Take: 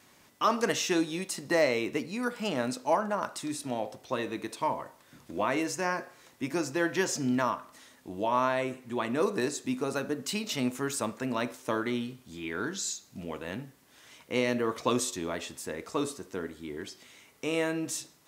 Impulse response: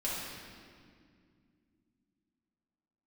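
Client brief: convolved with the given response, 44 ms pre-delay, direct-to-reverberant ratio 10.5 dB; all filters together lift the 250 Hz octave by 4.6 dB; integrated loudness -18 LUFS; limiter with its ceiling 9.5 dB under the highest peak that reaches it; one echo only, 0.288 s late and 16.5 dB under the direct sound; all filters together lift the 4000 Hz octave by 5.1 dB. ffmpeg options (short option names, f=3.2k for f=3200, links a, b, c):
-filter_complex "[0:a]equalizer=f=250:t=o:g=5.5,equalizer=f=4k:t=o:g=6.5,alimiter=limit=-19dB:level=0:latency=1,aecho=1:1:288:0.15,asplit=2[a][b];[1:a]atrim=start_sample=2205,adelay=44[c];[b][c]afir=irnorm=-1:irlink=0,volume=-16dB[d];[a][d]amix=inputs=2:normalize=0,volume=12.5dB"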